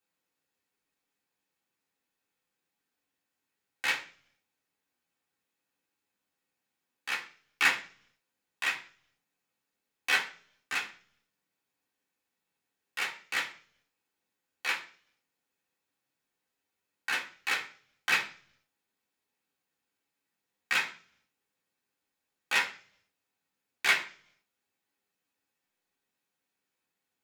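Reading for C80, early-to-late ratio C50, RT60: 16.5 dB, 12.0 dB, 0.45 s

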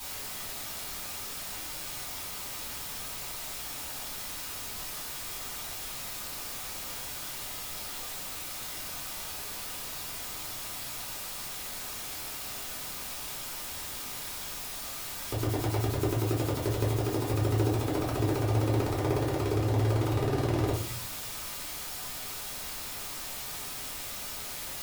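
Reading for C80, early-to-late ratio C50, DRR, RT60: 11.5 dB, 6.5 dB, −6.5 dB, 0.50 s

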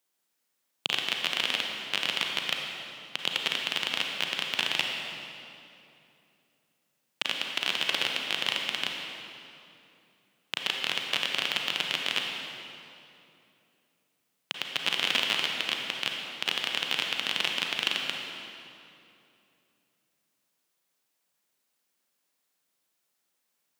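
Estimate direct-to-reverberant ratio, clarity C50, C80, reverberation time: 1.0 dB, 2.0 dB, 3.0 dB, 2.8 s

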